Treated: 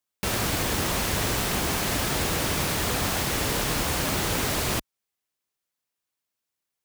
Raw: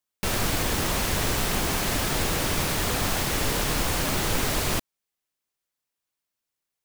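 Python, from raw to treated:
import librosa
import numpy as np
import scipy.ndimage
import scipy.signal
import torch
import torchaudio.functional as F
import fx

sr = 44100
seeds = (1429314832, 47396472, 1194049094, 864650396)

y = scipy.signal.sosfilt(scipy.signal.butter(2, 43.0, 'highpass', fs=sr, output='sos'), x)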